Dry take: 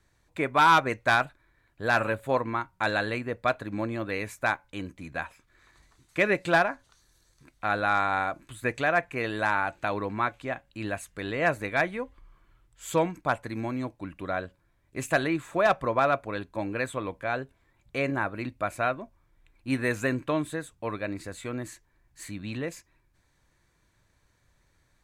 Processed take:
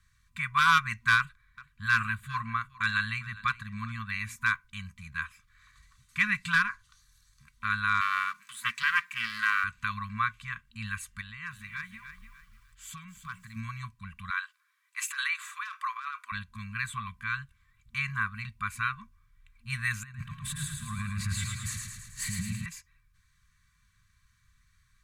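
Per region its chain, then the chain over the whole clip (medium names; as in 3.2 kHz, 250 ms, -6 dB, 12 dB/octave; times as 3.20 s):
1.17–4.36 s: treble shelf 11 kHz -4 dB + delay 405 ms -20 dB
8.01–9.64 s: companding laws mixed up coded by mu + high-pass 280 Hz 24 dB/octave + loudspeaker Doppler distortion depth 0.24 ms
11.21–13.56 s: compression 1.5:1, threshold -53 dBFS + bit-crushed delay 297 ms, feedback 35%, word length 10-bit, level -9 dB
14.30–16.32 s: steep high-pass 970 Hz + compressor with a negative ratio -34 dBFS
20.03–22.66 s: peaking EQ 150 Hz +9 dB 2.6 oct + compressor with a negative ratio -35 dBFS + feedback delay 109 ms, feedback 59%, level -3.5 dB
whole clip: FFT band-reject 230–1000 Hz; comb 2.6 ms, depth 40%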